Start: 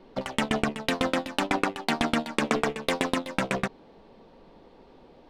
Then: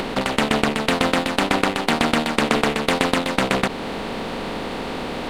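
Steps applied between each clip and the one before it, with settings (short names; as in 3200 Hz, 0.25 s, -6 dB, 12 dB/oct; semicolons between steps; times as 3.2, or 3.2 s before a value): per-bin compression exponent 0.4; upward compressor, threshold -25 dBFS; gain +2.5 dB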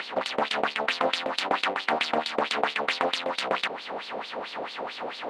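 LFO band-pass sine 4.5 Hz 580–4500 Hz; gain +2 dB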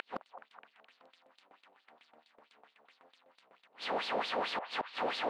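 flipped gate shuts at -23 dBFS, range -38 dB; delay with a stepping band-pass 0.211 s, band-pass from 820 Hz, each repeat 0.7 oct, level -7.5 dB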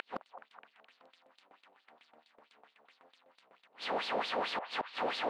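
nothing audible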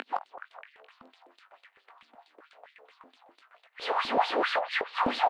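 doubler 20 ms -10 dB; stepped high-pass 7.9 Hz 250–1900 Hz; gain +3 dB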